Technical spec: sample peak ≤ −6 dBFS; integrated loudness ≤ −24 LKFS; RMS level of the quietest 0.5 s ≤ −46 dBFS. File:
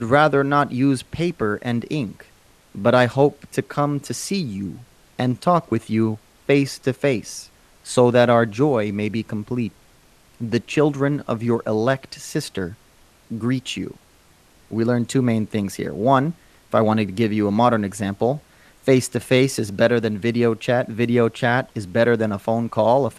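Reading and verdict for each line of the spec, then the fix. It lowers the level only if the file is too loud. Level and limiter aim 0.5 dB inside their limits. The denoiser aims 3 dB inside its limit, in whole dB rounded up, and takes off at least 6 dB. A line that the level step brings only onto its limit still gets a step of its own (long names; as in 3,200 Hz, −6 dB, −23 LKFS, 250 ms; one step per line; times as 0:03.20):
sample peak −2.5 dBFS: out of spec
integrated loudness −21.0 LKFS: out of spec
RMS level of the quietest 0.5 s −54 dBFS: in spec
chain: level −3.5 dB
brickwall limiter −6.5 dBFS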